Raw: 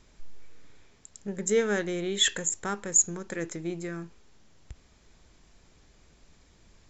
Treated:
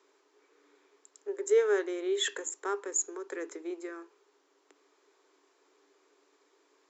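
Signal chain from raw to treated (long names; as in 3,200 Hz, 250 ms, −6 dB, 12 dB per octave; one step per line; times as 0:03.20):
Chebyshev high-pass with heavy ripple 280 Hz, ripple 9 dB
parametric band 450 Hz +6.5 dB 0.74 octaves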